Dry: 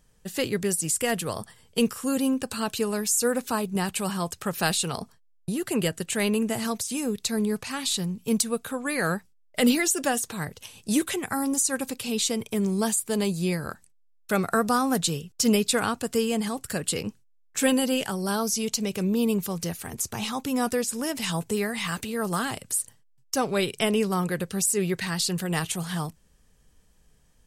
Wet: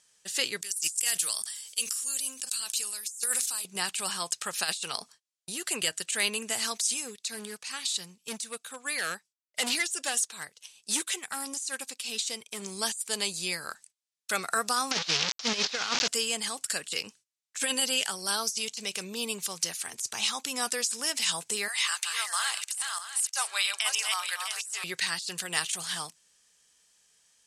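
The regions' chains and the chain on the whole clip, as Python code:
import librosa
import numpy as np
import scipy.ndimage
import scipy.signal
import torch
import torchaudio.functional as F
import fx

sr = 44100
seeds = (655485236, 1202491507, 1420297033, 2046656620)

y = fx.chain(x, sr, fx.pre_emphasis(coefficient=0.9),
    fx.sustainer(db_per_s=42.0), at=(0.61, 3.65))
y = fx.chain(y, sr, fx.clip_hard(threshold_db=-20.0),
    fx.upward_expand(threshold_db=-45.0, expansion=1.5), at=(6.94, 12.62))
y = fx.chain(y, sr, fx.delta_mod(bps=32000, step_db=-25.0),
    fx.leveller(passes=2), at=(14.91, 16.08))
y = fx.chain(y, sr, fx.reverse_delay_fb(ms=327, feedback_pct=42, wet_db=-5),
    fx.highpass(hz=790.0, slope=24), at=(21.68, 24.84))
y = fx.weighting(y, sr, curve='ITU-R 468')
y = fx.over_compress(y, sr, threshold_db=-21.0, ratio=-0.5)
y = F.gain(torch.from_numpy(y), -6.5).numpy()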